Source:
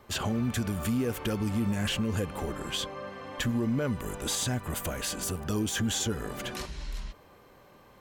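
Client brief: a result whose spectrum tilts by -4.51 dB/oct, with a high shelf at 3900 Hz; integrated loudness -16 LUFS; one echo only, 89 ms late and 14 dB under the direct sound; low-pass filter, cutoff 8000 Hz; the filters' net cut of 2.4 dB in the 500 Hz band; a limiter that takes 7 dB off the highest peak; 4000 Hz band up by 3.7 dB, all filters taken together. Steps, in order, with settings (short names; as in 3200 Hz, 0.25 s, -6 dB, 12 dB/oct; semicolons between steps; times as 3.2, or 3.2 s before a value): LPF 8000 Hz; bell 500 Hz -3 dB; high shelf 3900 Hz -6 dB; bell 4000 Hz +8.5 dB; limiter -24 dBFS; echo 89 ms -14 dB; gain +17.5 dB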